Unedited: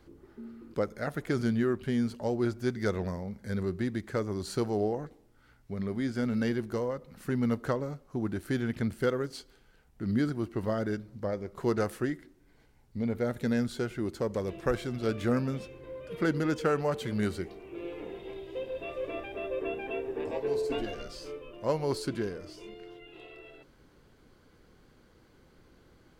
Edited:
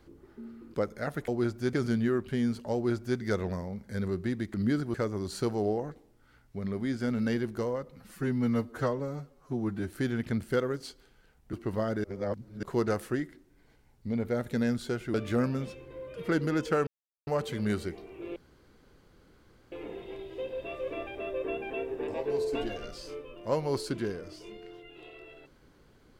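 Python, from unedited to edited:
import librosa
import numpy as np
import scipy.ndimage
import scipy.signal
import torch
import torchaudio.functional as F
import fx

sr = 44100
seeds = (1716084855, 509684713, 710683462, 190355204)

y = fx.edit(x, sr, fx.duplicate(start_s=2.29, length_s=0.45, to_s=1.28),
    fx.stretch_span(start_s=7.12, length_s=1.3, factor=1.5),
    fx.move(start_s=10.03, length_s=0.4, to_s=4.09),
    fx.reverse_span(start_s=10.94, length_s=0.59),
    fx.cut(start_s=14.04, length_s=1.03),
    fx.insert_silence(at_s=16.8, length_s=0.4),
    fx.insert_room_tone(at_s=17.89, length_s=1.36), tone=tone)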